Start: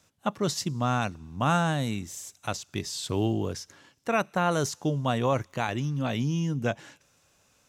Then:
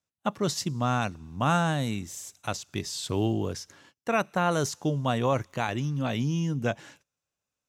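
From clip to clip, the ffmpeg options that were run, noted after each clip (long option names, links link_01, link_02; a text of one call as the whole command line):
ffmpeg -i in.wav -af "agate=range=-23dB:threshold=-56dB:ratio=16:detection=peak" out.wav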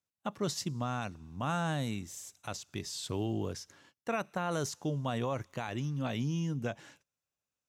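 ffmpeg -i in.wav -af "alimiter=limit=-18dB:level=0:latency=1:release=53,volume=-5.5dB" out.wav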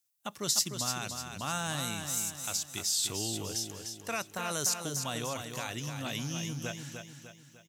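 ffmpeg -i in.wav -filter_complex "[0:a]crystalizer=i=7.5:c=0,asplit=2[link_01][link_02];[link_02]aecho=0:1:300|600|900|1200|1500:0.473|0.218|0.1|0.0461|0.0212[link_03];[link_01][link_03]amix=inputs=2:normalize=0,volume=-5.5dB" out.wav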